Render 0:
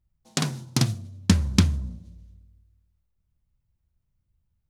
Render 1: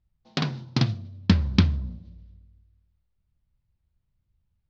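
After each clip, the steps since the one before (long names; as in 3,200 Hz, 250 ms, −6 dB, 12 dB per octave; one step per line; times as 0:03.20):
Butterworth low-pass 4,800 Hz 36 dB per octave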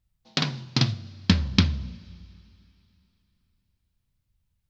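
high-shelf EQ 2,100 Hz +9 dB
coupled-rooms reverb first 0.31 s, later 3.2 s, from −18 dB, DRR 13.5 dB
level −1.5 dB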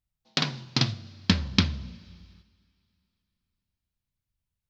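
low-shelf EQ 200 Hz −5.5 dB
noise gate −54 dBFS, range −7 dB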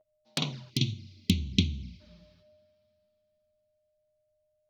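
steady tone 610 Hz −56 dBFS
flanger swept by the level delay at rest 9.8 ms, full sweep at −25.5 dBFS
gain on a spectral selection 0:00.70–0:02.00, 420–2,000 Hz −21 dB
level −2 dB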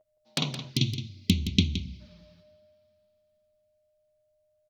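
single-tap delay 169 ms −10.5 dB
level +2 dB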